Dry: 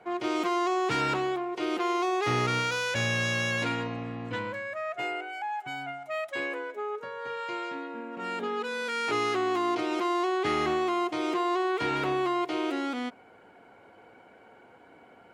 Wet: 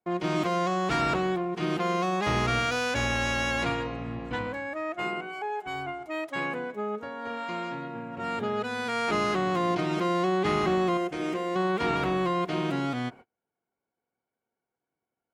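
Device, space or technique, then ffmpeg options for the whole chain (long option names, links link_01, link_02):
octave pedal: -filter_complex "[0:a]asplit=2[link_01][link_02];[link_02]asetrate=22050,aresample=44100,atempo=2,volume=-4dB[link_03];[link_01][link_03]amix=inputs=2:normalize=0,agate=range=-35dB:threshold=-45dB:ratio=16:detection=peak,asettb=1/sr,asplit=3[link_04][link_05][link_06];[link_04]atrim=end=10.974[link_07];[link_05]atrim=start=10.97:end=11.56,asetpts=PTS-STARTPTS,afade=type=in:duration=0.004:curve=qsin,afade=type=out:start_time=0.586:duration=0.004:curve=qsin,equalizer=frequency=160:width_type=o:width=0.67:gain=-11,equalizer=frequency=1000:width_type=o:width=0.67:gain=-8,equalizer=frequency=4000:width_type=o:width=0.67:gain=-7[link_08];[link_06]atrim=start=11.556[link_09];[link_07][link_08]acrossfade=duration=0.004:curve1=hsin:curve2=qsin[link_10];[link_10][link_09]acrossfade=duration=0.004:curve1=qsin:curve2=hsin"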